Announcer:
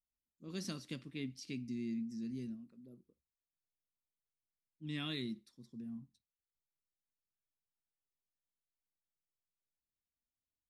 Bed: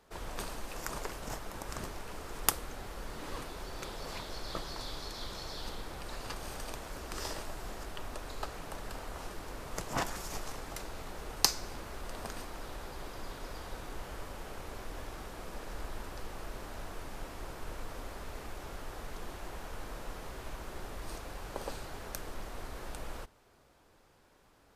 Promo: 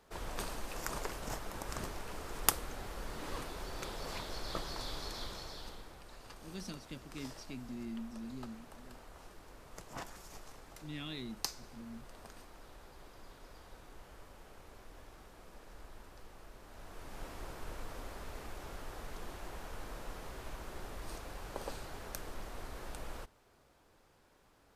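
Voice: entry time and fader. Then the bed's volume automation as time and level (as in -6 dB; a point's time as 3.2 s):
6.00 s, -3.0 dB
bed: 5.16 s -0.5 dB
6.07 s -11.5 dB
16.62 s -11.5 dB
17.25 s -2.5 dB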